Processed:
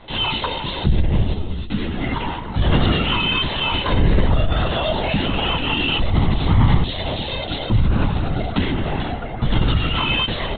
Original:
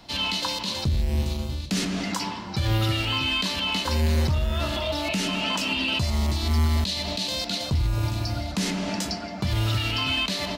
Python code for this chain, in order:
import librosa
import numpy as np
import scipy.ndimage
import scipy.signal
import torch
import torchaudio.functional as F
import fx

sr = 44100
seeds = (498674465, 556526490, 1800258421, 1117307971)

y = fx.air_absorb(x, sr, metres=81.0)
y = fx.notch(y, sr, hz=2400.0, q=8.7)
y = fx.lpc_vocoder(y, sr, seeds[0], excitation='whisper', order=16)
y = fx.ensemble(y, sr, at=(1.33, 1.99), fade=0.02)
y = y * 10.0 ** (7.5 / 20.0)